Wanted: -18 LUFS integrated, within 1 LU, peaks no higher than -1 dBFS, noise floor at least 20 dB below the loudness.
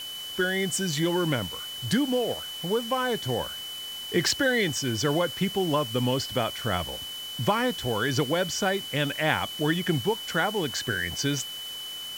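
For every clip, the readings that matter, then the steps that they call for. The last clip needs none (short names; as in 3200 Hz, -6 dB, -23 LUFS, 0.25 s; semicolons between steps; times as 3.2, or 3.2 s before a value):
steady tone 3000 Hz; tone level -35 dBFS; noise floor -37 dBFS; noise floor target -47 dBFS; loudness -27.0 LUFS; peak -8.5 dBFS; loudness target -18.0 LUFS
-> notch 3000 Hz, Q 30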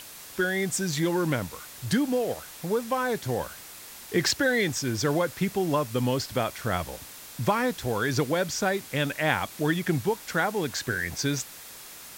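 steady tone none; noise floor -45 dBFS; noise floor target -48 dBFS
-> noise print and reduce 6 dB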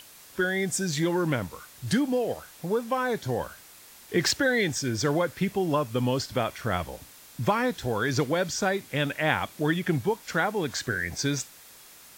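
noise floor -51 dBFS; loudness -27.5 LUFS; peak -8.5 dBFS; loudness target -18.0 LUFS
-> gain +9.5 dB; limiter -1 dBFS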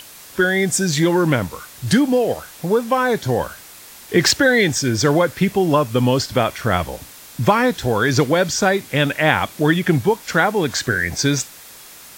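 loudness -18.0 LUFS; peak -1.0 dBFS; noise floor -41 dBFS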